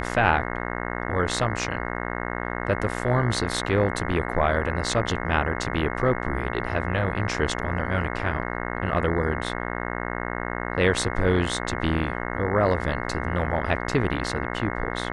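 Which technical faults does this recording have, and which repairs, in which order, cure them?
buzz 60 Hz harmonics 36 -30 dBFS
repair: de-hum 60 Hz, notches 36

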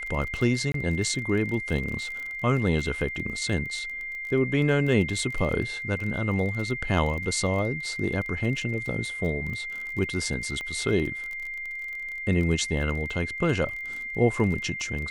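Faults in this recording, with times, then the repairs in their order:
crackle 28 per s -32 dBFS
whine 2.1 kHz -32 dBFS
0.72–0.74 s: dropout 23 ms
10.61 s: pop -22 dBFS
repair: de-click; band-stop 2.1 kHz, Q 30; interpolate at 0.72 s, 23 ms

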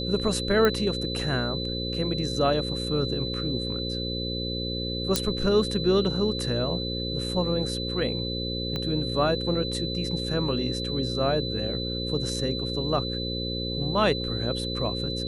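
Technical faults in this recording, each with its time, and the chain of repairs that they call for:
buzz 60 Hz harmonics 9 -32 dBFS
whine 4 kHz -32 dBFS
0.65 s: pop -10 dBFS
5.16 s: pop -6 dBFS
8.76 s: pop -17 dBFS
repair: de-click; band-stop 4 kHz, Q 30; de-hum 60 Hz, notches 9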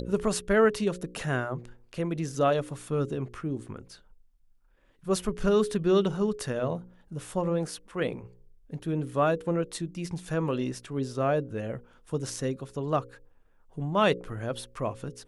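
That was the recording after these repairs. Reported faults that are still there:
8.76 s: pop

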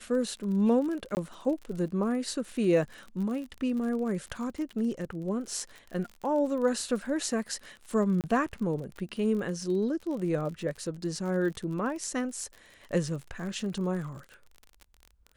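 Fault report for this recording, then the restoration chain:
crackle 47 per s -37 dBFS
1.15–1.17 s: dropout 19 ms
8.21–8.24 s: dropout 28 ms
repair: de-click; interpolate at 1.15 s, 19 ms; interpolate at 8.21 s, 28 ms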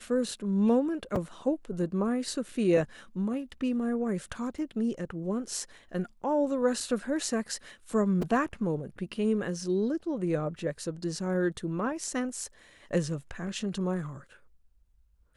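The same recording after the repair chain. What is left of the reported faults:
nothing left

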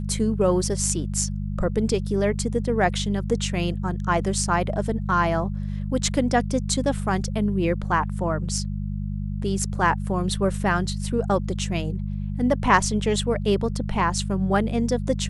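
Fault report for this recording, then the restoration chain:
hum 50 Hz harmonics 4 -28 dBFS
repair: de-hum 50 Hz, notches 4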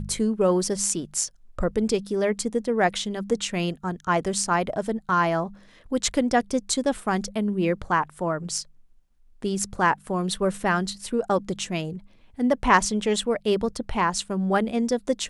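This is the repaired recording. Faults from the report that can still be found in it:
nothing left

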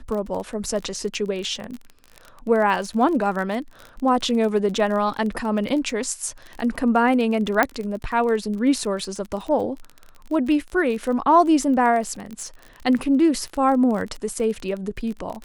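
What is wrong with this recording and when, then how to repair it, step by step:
crackle 27 per s -28 dBFS
7.63 s: pop -5 dBFS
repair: de-click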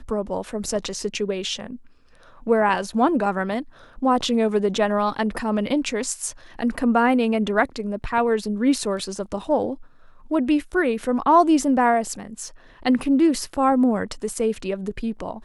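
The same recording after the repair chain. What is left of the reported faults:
nothing left

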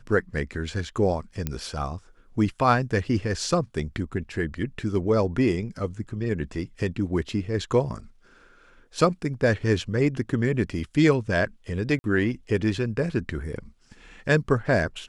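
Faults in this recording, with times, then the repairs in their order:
1.47 s: pop -13 dBFS
11.99–12.04 s: dropout 51 ms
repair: de-click; interpolate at 11.99 s, 51 ms

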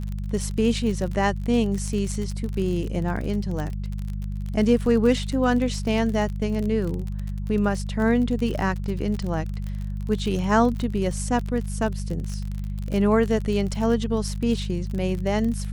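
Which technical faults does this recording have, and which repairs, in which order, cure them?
crackle 38 per s -28 dBFS
hum 50 Hz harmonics 4 -29 dBFS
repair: de-click; de-hum 50 Hz, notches 4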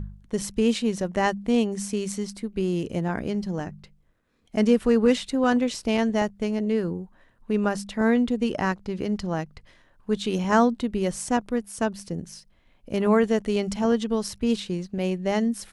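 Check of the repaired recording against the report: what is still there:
nothing left

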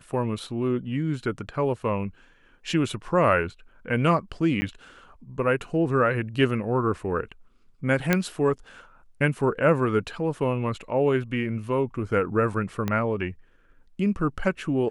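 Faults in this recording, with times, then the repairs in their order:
4.61–4.62 s: dropout 10 ms
8.13 s: pop -6 dBFS
12.88 s: pop -13 dBFS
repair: de-click; interpolate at 4.61 s, 10 ms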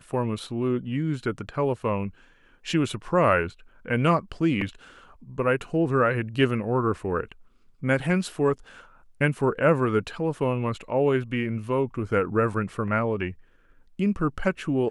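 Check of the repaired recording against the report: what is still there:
12.88 s: pop

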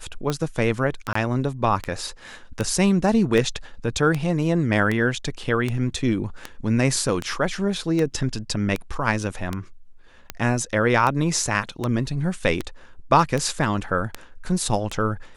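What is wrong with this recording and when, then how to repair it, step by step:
tick 78 rpm -11 dBFS
1.13–1.15 s: dropout 24 ms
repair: de-click; interpolate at 1.13 s, 24 ms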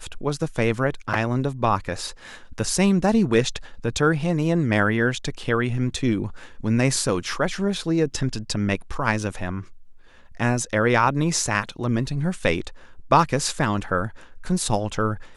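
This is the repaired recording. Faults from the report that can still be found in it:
nothing left

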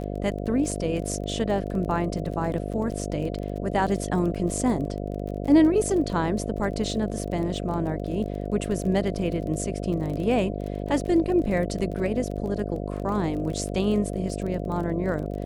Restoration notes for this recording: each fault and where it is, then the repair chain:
buzz 50 Hz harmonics 14 -31 dBFS
crackle 25 per s -32 dBFS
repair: de-click; de-hum 50 Hz, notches 14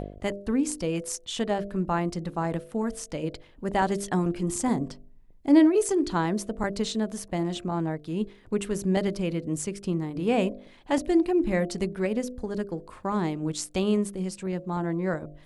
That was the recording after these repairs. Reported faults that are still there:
nothing left

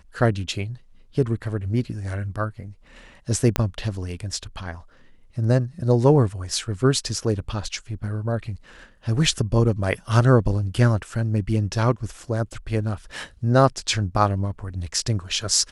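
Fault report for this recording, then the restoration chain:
3.56 s: pop -5 dBFS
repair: de-click

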